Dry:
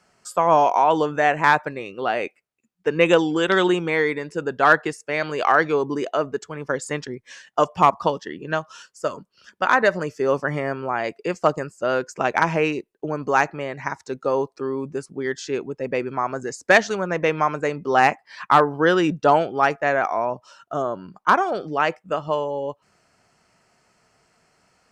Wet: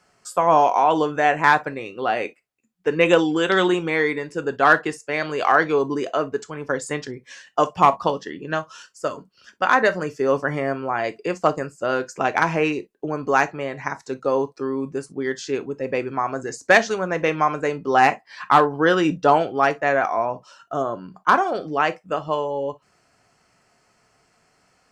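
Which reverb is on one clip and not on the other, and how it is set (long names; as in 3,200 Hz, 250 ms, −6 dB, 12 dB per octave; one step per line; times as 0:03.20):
reverb whose tail is shaped and stops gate 80 ms falling, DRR 9.5 dB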